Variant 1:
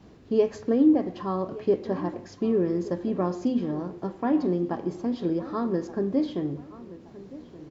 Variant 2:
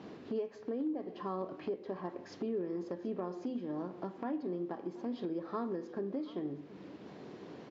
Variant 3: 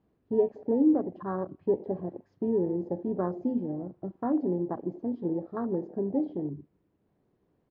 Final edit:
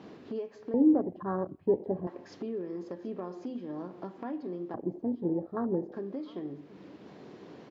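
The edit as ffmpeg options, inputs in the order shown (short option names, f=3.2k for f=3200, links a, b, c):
-filter_complex "[2:a]asplit=2[a][b];[1:a]asplit=3[c][d][e];[c]atrim=end=0.742[f];[a]atrim=start=0.738:end=2.072[g];[d]atrim=start=2.068:end=4.742[h];[b]atrim=start=4.738:end=5.922[i];[e]atrim=start=5.918[j];[f][g]acrossfade=d=0.004:c1=hsin:c2=hsin[k];[k][h]acrossfade=d=0.004:c1=hsin:c2=hsin[l];[l][i]acrossfade=d=0.004:c1=hsin:c2=hsin[m];[m][j]acrossfade=d=0.004:c1=hsin:c2=hsin"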